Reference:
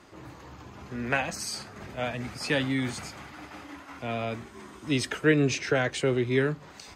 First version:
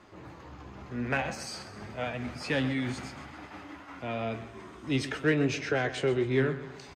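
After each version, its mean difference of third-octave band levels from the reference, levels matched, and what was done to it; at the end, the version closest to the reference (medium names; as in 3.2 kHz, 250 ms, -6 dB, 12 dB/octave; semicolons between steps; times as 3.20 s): 3.0 dB: treble shelf 6.4 kHz -12 dB; flange 0.53 Hz, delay 9.1 ms, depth 7.8 ms, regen +63%; in parallel at -7 dB: saturation -30 dBFS, distortion -8 dB; on the sum: feedback delay 131 ms, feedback 48%, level -14 dB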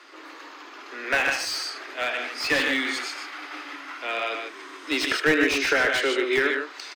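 8.5 dB: steep high-pass 270 Hz 96 dB/octave; high-order bell 2.5 kHz +9 dB 2.5 oct; multi-tap echo 78/121/150 ms -11.5/-9.5/-7 dB; slew-rate limiter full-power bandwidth 240 Hz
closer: first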